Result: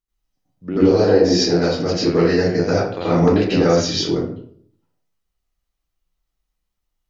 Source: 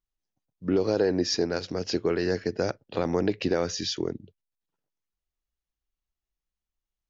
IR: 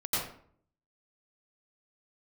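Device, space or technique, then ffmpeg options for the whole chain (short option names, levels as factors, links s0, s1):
bathroom: -filter_complex "[1:a]atrim=start_sample=2205[s0];[0:a][s0]afir=irnorm=-1:irlink=0,volume=1.33"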